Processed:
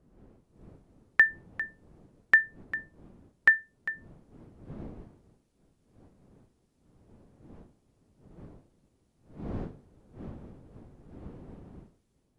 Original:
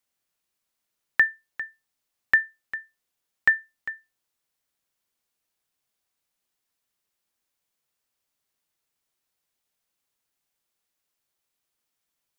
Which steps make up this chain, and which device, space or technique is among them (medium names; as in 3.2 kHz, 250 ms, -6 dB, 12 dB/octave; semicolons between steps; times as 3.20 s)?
smartphone video outdoors (wind noise 270 Hz -49 dBFS; level rider gain up to 6 dB; trim -5.5 dB; AAC 64 kbps 24 kHz)